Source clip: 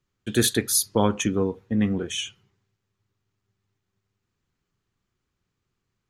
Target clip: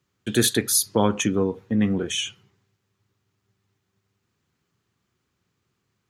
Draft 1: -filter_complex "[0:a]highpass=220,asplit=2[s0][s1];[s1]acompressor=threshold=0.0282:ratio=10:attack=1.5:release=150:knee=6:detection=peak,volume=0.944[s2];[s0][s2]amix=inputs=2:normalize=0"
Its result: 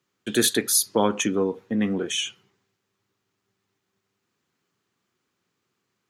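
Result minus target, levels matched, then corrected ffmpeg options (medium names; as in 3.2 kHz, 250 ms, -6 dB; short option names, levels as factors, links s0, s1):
125 Hz band -6.0 dB
-filter_complex "[0:a]highpass=86,asplit=2[s0][s1];[s1]acompressor=threshold=0.0282:ratio=10:attack=1.5:release=150:knee=6:detection=peak,volume=0.944[s2];[s0][s2]amix=inputs=2:normalize=0"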